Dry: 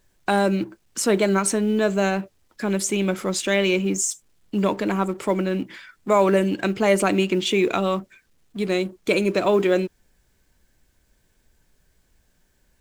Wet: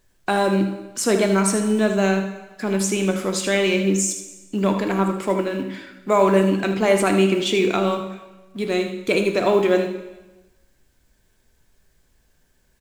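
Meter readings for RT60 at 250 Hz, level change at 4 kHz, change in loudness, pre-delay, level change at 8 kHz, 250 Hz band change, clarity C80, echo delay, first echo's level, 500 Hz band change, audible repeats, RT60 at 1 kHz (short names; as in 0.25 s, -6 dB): 1.1 s, +1.5 dB, +1.5 dB, 5 ms, +1.0 dB, +2.0 dB, 10.0 dB, 78 ms, -9.5 dB, +1.5 dB, 1, 1.1 s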